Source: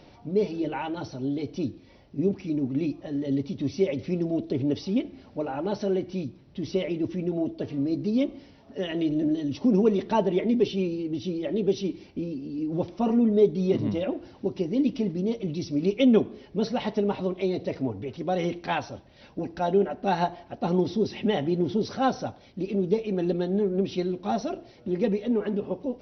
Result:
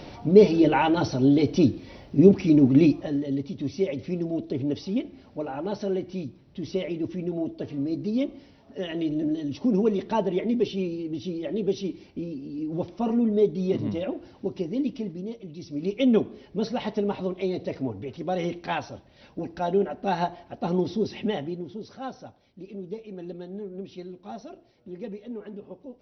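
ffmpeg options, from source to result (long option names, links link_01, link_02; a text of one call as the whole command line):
ffmpeg -i in.wav -af "volume=20dB,afade=type=out:start_time=2.85:duration=0.41:silence=0.266073,afade=type=out:start_time=14.58:duration=0.92:silence=0.334965,afade=type=in:start_time=15.5:duration=0.62:silence=0.316228,afade=type=out:start_time=21.19:duration=0.46:silence=0.298538" out.wav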